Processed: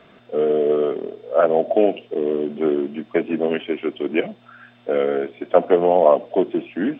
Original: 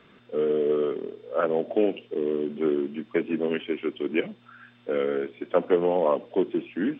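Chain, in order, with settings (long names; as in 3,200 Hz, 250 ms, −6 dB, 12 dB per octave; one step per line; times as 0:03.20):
parametric band 670 Hz +11.5 dB 0.4 octaves
level +4 dB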